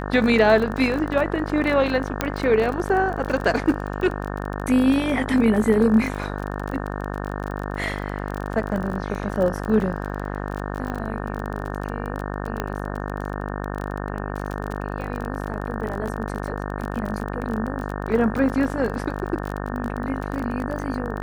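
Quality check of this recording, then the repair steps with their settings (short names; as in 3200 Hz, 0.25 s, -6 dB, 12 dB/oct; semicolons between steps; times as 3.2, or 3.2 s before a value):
buzz 50 Hz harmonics 36 -29 dBFS
crackle 27/s -27 dBFS
2.21 pop -6 dBFS
10.9 pop -18 dBFS
12.6 pop -11 dBFS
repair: de-click; de-hum 50 Hz, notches 36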